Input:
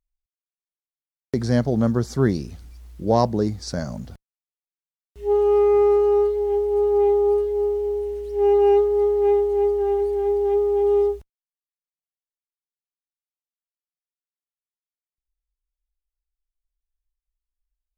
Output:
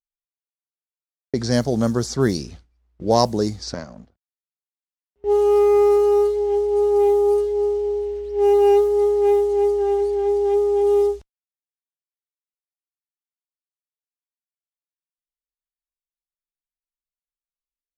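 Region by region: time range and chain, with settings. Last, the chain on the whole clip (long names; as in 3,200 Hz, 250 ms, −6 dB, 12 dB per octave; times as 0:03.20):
0:03.74–0:05.24: parametric band 120 Hz −11.5 dB 0.35 octaves + power curve on the samples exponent 1.4 + multiband upward and downward compressor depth 40%
whole clip: noise gate with hold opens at −29 dBFS; low-pass that shuts in the quiet parts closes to 1,700 Hz, open at −14 dBFS; bass and treble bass −4 dB, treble +13 dB; level +2 dB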